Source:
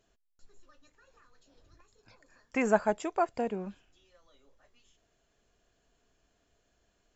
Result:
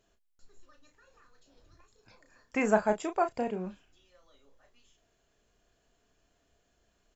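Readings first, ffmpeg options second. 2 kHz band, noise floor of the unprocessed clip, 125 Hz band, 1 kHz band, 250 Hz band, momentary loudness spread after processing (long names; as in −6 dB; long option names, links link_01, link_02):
+0.5 dB, −75 dBFS, can't be measured, +0.5 dB, +1.0 dB, 11 LU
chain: -filter_complex "[0:a]asplit=2[link_01][link_02];[link_02]adelay=33,volume=-8dB[link_03];[link_01][link_03]amix=inputs=2:normalize=0"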